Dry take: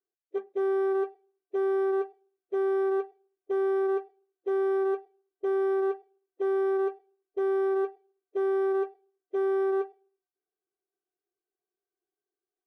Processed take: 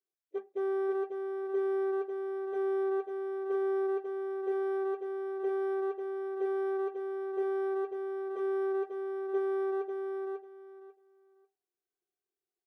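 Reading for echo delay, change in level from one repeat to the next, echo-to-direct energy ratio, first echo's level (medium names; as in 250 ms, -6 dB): 544 ms, -14.5 dB, -5.0 dB, -5.0 dB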